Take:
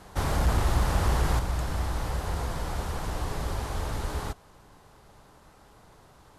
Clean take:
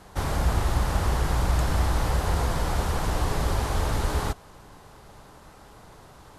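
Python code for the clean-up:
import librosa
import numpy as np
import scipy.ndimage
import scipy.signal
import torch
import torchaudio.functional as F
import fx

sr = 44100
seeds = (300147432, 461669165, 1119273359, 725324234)

y = fx.fix_declip(x, sr, threshold_db=-16.5)
y = fx.fix_level(y, sr, at_s=1.39, step_db=6.0)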